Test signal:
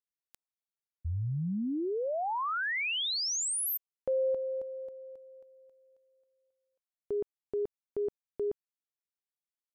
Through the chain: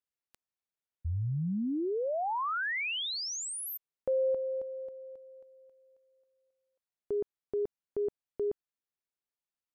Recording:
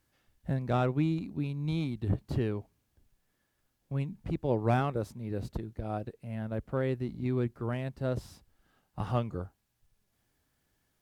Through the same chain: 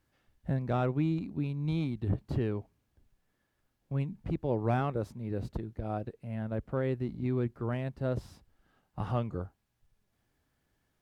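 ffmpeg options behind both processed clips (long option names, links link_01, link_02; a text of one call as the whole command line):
ffmpeg -i in.wav -filter_complex "[0:a]asplit=2[link_01][link_02];[link_02]alimiter=level_in=0.5dB:limit=-24dB:level=0:latency=1,volume=-0.5dB,volume=-2dB[link_03];[link_01][link_03]amix=inputs=2:normalize=0,highshelf=frequency=4000:gain=-7.5,volume=-4.5dB" out.wav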